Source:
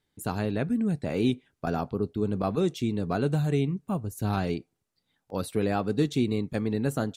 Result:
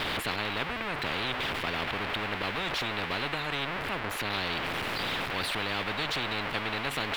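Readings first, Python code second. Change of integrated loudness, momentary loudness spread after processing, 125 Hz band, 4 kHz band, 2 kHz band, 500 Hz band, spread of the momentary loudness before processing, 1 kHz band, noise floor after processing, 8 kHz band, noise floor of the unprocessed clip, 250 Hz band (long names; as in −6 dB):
−2.0 dB, 2 LU, −11.0 dB, +12.0 dB, +11.5 dB, −6.5 dB, 6 LU, +3.0 dB, −35 dBFS, 0.0 dB, −80 dBFS, −11.5 dB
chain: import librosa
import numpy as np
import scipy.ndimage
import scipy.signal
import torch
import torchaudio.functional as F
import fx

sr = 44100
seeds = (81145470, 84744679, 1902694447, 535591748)

y = x + 0.5 * 10.0 ** (-32.5 / 20.0) * np.sign(x)
y = fx.air_absorb(y, sr, metres=470.0)
y = fx.spectral_comp(y, sr, ratio=10.0)
y = y * 10.0 ** (-1.5 / 20.0)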